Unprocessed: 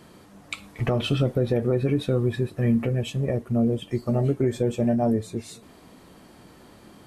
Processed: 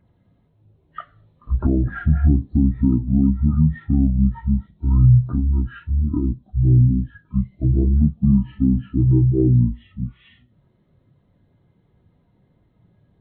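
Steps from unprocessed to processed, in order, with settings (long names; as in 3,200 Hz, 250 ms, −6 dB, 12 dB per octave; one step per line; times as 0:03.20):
hearing-aid frequency compression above 2,900 Hz 1.5 to 1
change of speed 0.535×
every bin expanded away from the loudest bin 1.5 to 1
level +7.5 dB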